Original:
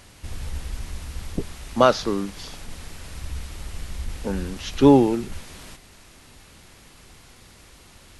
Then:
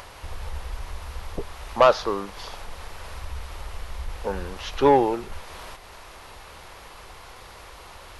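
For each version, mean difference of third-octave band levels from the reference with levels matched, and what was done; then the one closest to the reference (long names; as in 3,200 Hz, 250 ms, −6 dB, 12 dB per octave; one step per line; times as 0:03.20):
4.5 dB: octave-band graphic EQ 125/250/500/1,000/8,000 Hz −6/−10/+5/+8/−7 dB
in parallel at −3 dB: upward compression, threshold −26 dBFS
on the sum: soft clipping −1 dBFS, distortion −12 dB
level −6 dB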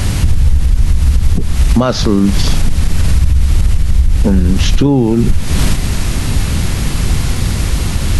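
7.5 dB: bass and treble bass +14 dB, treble +1 dB
downward compressor 12 to 1, threshold −28 dBFS, peak gain reduction 25.5 dB
boost into a limiter +26.5 dB
level −1 dB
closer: first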